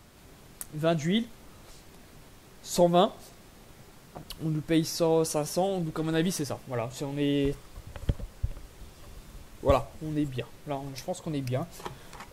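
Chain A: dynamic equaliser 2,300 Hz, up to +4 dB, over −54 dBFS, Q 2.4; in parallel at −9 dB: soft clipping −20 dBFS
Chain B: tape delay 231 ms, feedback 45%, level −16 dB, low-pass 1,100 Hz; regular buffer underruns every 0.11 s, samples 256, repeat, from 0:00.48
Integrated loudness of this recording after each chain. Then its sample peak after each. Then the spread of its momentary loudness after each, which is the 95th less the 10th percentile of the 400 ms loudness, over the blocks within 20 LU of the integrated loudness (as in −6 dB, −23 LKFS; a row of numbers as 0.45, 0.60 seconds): −27.5, −29.5 LKFS; −8.0, −8.5 dBFS; 19, 20 LU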